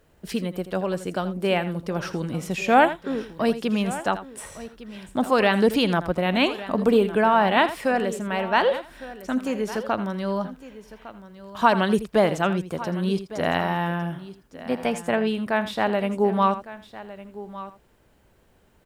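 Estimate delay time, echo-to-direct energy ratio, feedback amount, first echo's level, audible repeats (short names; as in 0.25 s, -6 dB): 82 ms, -11.5 dB, no steady repeat, -13.5 dB, 3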